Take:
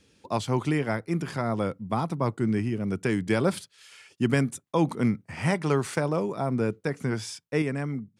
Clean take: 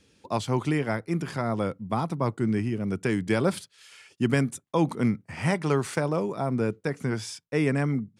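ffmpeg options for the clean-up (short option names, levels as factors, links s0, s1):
-af "asetnsamples=n=441:p=0,asendcmd='7.62 volume volume 5dB',volume=1"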